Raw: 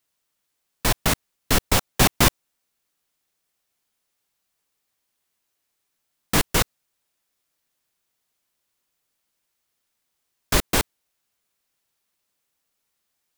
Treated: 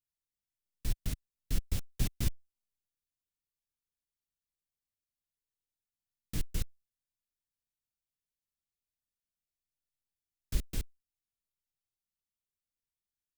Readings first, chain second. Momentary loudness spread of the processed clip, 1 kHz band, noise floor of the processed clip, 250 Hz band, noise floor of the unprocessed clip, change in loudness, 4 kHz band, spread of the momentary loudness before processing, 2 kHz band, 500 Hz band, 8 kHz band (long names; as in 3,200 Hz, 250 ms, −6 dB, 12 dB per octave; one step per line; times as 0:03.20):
8 LU, −32.0 dB, below −85 dBFS, −17.0 dB, −77 dBFS, −17.5 dB, −22.0 dB, 8 LU, −26.0 dB, −25.0 dB, −20.5 dB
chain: guitar amp tone stack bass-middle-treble 10-0-1